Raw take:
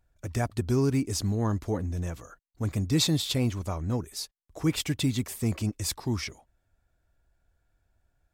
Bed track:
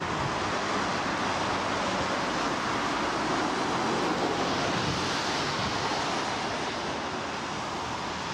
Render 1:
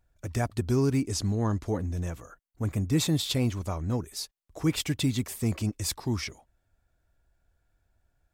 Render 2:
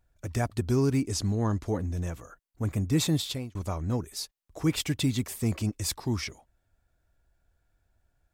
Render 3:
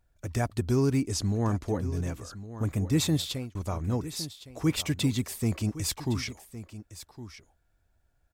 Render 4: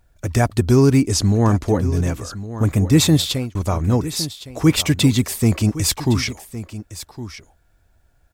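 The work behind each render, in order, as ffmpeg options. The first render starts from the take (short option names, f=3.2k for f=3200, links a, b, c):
-filter_complex "[0:a]asettb=1/sr,asplit=3[a][b][c];[a]atrim=end=1.084[d];[b]atrim=start=1.08:end=1.66,asetpts=PTS-STARTPTS,afade=t=in:d=0.004:c=qsin,afade=t=out:st=0.576:d=0.004:c=qsin,lowpass=11k[e];[c]atrim=start=1.656[f];[d][e]acrossfade=d=0.004:c1=hsin:c2=qsin[g];[g][f]acrossfade=d=0.004:c1=qsin:c2=hsin,asettb=1/sr,asplit=3[h][i][j];[h]atrim=end=2.164[k];[i]atrim=start=2.16:end=3.19,asetpts=PTS-STARTPTS,afade=t=in:d=0.004:c=qsin,afade=t=out:st=1.026:d=0.004:c=qsin,equalizer=f=4.5k:w=1.5:g=-7.5[l];[j]atrim=start=3.186[m];[k][l]acrossfade=d=0.004:c1=hsin:c2=qsin[n];[n][m]acrossfade=d=0.004:c1=qsin:c2=hsin"
-filter_complex "[0:a]asplit=2[a][b];[a]atrim=end=3.55,asetpts=PTS-STARTPTS,afade=t=out:st=3.15:d=0.4[c];[b]atrim=start=3.55,asetpts=PTS-STARTPTS,afade=t=in:d=0.004:c=hsin[d];[c][d]concat=n=2:v=0:a=1"
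-af "aecho=1:1:1112:0.2"
-af "volume=11.5dB"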